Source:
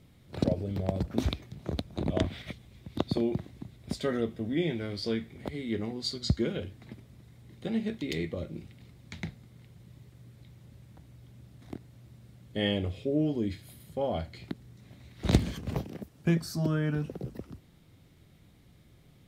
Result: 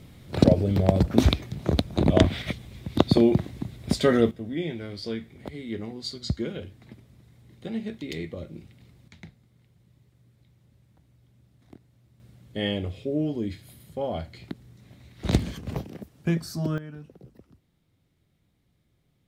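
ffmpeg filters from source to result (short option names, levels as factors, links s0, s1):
-af "asetnsamples=n=441:p=0,asendcmd='4.31 volume volume -1dB;9.08 volume volume -8dB;12.2 volume volume 1dB;16.78 volume volume -11dB',volume=3.16"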